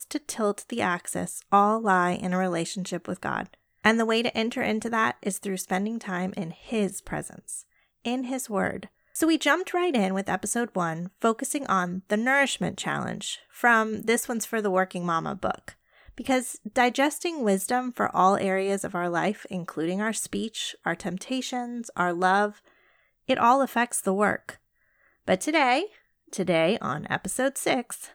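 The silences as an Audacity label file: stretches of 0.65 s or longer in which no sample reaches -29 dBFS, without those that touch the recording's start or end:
22.490000	23.290000	silence
24.510000	25.280000	silence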